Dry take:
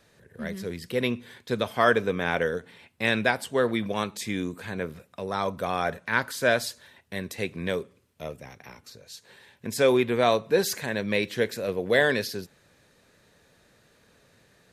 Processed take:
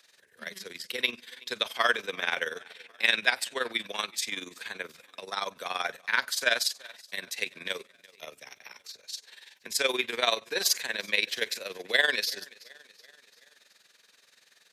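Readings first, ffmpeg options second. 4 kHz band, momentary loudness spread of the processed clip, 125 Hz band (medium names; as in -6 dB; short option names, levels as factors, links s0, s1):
+5.5 dB, 19 LU, under -20 dB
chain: -filter_complex "[0:a]acrossover=split=170[s0][s1];[s1]crystalizer=i=5.5:c=0[s2];[s0][s2]amix=inputs=2:normalize=0,acrossover=split=230 5700:gain=0.0708 1 0.178[s3][s4][s5];[s3][s4][s5]amix=inputs=3:normalize=0,aecho=1:1:364|728|1092|1456:0.0668|0.0374|0.021|0.0117,tremolo=f=21:d=0.75,equalizer=f=280:w=0.33:g=-9"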